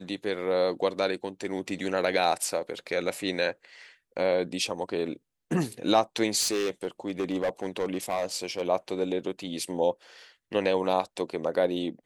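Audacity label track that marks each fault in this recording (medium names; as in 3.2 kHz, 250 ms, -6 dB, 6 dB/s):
6.400000	8.620000	clipped -23 dBFS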